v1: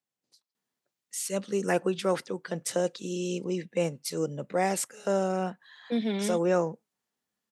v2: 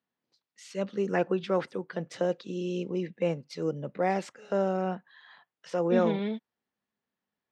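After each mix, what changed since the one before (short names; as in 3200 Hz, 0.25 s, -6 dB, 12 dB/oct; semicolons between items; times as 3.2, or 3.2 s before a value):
first voice: entry -0.55 s; master: add air absorption 200 m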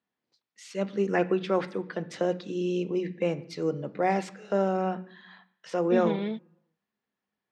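reverb: on, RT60 0.70 s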